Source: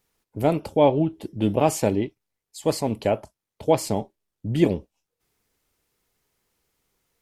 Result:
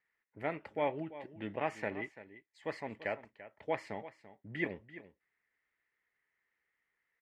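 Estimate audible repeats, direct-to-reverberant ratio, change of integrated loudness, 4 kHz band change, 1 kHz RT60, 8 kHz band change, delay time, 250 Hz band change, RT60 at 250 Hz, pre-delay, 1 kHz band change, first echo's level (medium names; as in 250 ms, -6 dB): 1, no reverb, -16.0 dB, -17.5 dB, no reverb, under -30 dB, 339 ms, -19.0 dB, no reverb, no reverb, -13.5 dB, -15.0 dB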